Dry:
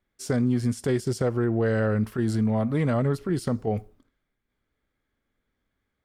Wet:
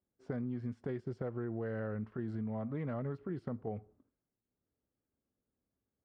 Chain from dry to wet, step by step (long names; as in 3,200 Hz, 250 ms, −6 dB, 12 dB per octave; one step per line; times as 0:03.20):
high-pass filter 75 Hz
downward compressor 3 to 1, threshold −31 dBFS, peak gain reduction 9 dB
low-pass that shuts in the quiet parts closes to 710 Hz, open at −18.5 dBFS
level −6.5 dB